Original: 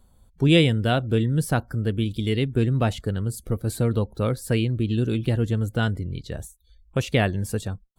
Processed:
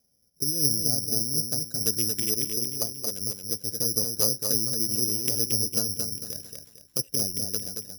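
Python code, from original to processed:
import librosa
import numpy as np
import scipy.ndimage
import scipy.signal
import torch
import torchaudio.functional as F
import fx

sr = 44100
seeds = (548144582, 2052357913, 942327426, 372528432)

y = fx.wiener(x, sr, points=41)
y = scipy.signal.sosfilt(scipy.signal.butter(2, 78.0, 'highpass', fs=sr, output='sos'), y)
y = fx.riaa(y, sr, side='recording')
y = fx.env_lowpass_down(y, sr, base_hz=310.0, full_db=-23.5)
y = fx.low_shelf(y, sr, hz=210.0, db=-10.5, at=(2.44, 3.21))
y = fx.over_compress(y, sr, threshold_db=-28.0, ratio=-0.5)
y = fx.rotary(y, sr, hz=0.9)
y = fx.echo_feedback(y, sr, ms=226, feedback_pct=35, wet_db=-5)
y = (np.kron(y[::8], np.eye(8)[0]) * 8)[:len(y)]
y = y * 10.0 ** (-2.5 / 20.0)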